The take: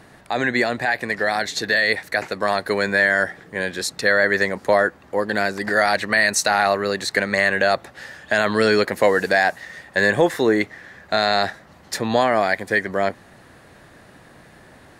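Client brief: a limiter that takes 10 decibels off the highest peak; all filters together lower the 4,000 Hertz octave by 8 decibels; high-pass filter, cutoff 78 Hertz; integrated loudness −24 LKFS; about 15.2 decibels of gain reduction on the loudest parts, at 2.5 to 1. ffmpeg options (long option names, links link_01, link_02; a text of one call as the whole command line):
ffmpeg -i in.wav -af "highpass=78,equalizer=frequency=4000:width_type=o:gain=-9,acompressor=threshold=-36dB:ratio=2.5,volume=14.5dB,alimiter=limit=-12.5dB:level=0:latency=1" out.wav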